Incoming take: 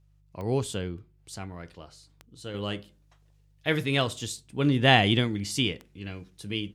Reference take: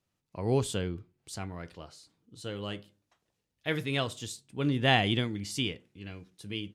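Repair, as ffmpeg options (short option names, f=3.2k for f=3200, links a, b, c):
-af "adeclick=t=4,bandreject=f=50:t=h:w=4,bandreject=f=100:t=h:w=4,bandreject=f=150:t=h:w=4,asetnsamples=n=441:p=0,asendcmd='2.54 volume volume -5dB',volume=0dB"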